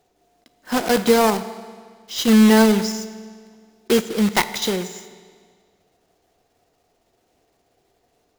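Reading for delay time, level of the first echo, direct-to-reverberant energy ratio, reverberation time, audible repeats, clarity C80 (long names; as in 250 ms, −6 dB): no echo audible, no echo audible, 12.0 dB, 1.8 s, no echo audible, 14.5 dB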